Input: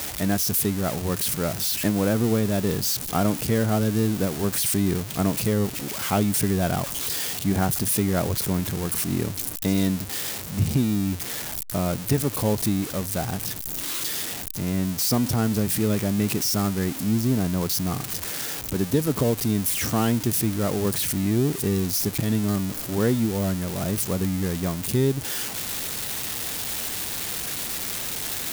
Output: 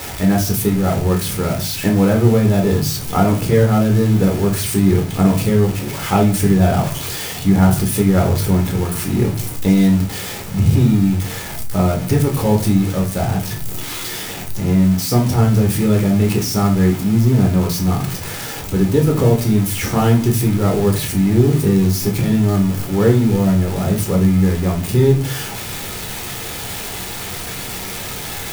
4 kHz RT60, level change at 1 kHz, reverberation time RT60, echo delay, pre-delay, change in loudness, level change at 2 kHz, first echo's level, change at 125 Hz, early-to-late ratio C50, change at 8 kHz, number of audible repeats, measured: 0.30 s, +8.0 dB, 0.45 s, no echo, 10 ms, +7.5 dB, +6.0 dB, no echo, +11.0 dB, 10.0 dB, +1.0 dB, no echo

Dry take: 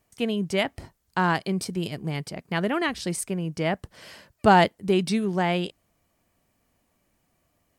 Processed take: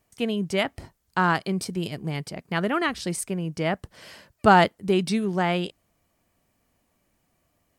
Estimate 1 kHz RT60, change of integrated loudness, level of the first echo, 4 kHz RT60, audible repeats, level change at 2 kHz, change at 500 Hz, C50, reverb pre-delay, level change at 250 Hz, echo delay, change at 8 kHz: no reverb, +0.5 dB, no echo, no reverb, no echo, +1.5 dB, 0.0 dB, no reverb, no reverb, 0.0 dB, no echo, 0.0 dB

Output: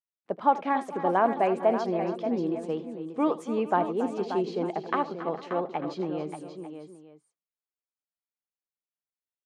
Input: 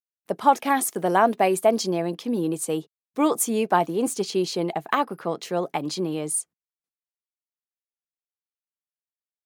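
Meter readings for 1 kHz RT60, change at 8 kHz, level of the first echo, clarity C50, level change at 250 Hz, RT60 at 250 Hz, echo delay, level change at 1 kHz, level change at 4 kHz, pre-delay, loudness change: no reverb, under -25 dB, -17.0 dB, no reverb, -4.0 dB, no reverb, 78 ms, -4.0 dB, -13.0 dB, no reverb, -4.5 dB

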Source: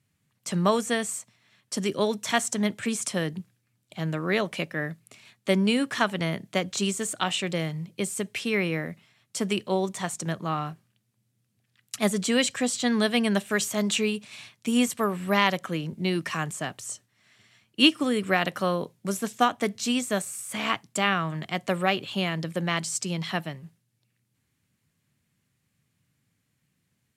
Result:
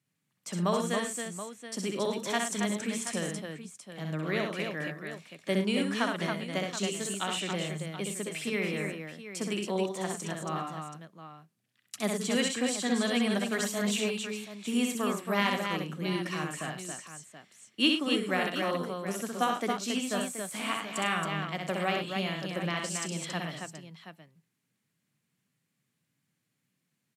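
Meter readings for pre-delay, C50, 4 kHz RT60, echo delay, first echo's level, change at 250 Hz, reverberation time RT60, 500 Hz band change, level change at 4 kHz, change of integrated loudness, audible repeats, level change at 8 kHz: no reverb, no reverb, no reverb, 64 ms, -4.0 dB, -4.5 dB, no reverb, -4.0 dB, -4.5 dB, -4.5 dB, 4, -4.5 dB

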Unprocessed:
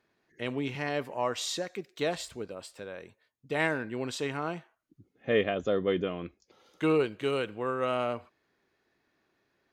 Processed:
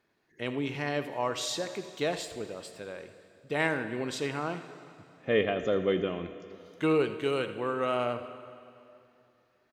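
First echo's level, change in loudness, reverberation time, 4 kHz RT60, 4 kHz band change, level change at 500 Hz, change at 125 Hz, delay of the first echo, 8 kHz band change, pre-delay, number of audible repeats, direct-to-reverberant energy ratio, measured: -15.0 dB, 0.0 dB, 2.7 s, 2.5 s, +0.5 dB, +0.5 dB, +0.5 dB, 82 ms, +0.5 dB, 17 ms, 1, 9.5 dB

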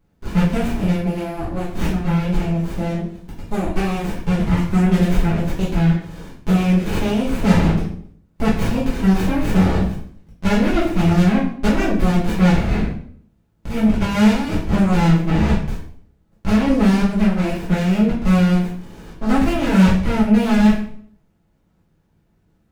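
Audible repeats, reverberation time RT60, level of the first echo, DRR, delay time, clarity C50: no echo, 0.60 s, no echo, -8.0 dB, no echo, 5.0 dB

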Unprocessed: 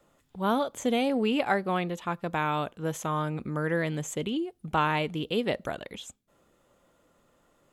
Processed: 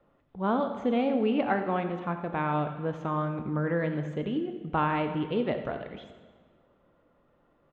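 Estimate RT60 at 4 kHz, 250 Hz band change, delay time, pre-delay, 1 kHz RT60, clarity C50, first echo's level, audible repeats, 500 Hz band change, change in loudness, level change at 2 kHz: 1.3 s, +1.0 dB, 87 ms, 11 ms, 1.6 s, 8.0 dB, -13.5 dB, 1, 0.0 dB, -0.5 dB, -3.5 dB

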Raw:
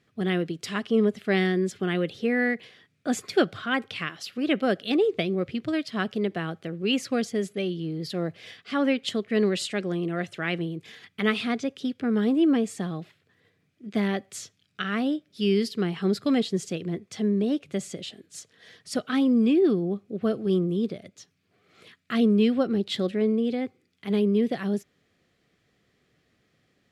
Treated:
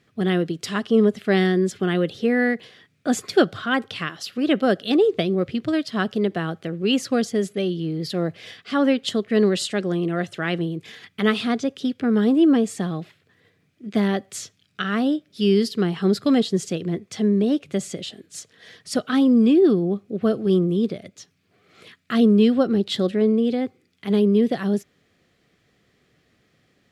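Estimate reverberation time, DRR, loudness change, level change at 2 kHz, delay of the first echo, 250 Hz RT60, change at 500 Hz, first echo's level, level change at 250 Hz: no reverb, no reverb, +5.0 dB, +2.5 dB, no echo, no reverb, +5.0 dB, no echo, +5.0 dB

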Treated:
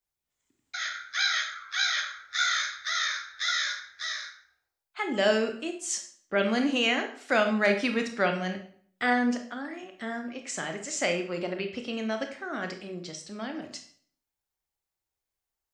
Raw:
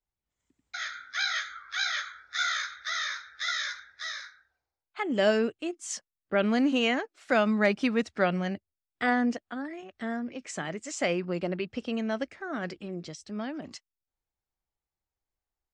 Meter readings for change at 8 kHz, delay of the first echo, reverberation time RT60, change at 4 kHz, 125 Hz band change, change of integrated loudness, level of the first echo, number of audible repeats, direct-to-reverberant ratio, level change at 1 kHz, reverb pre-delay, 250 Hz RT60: +5.0 dB, no echo, 0.55 s, +4.0 dB, -3.0 dB, +1.0 dB, no echo, no echo, 5.0 dB, +1.0 dB, 20 ms, 0.60 s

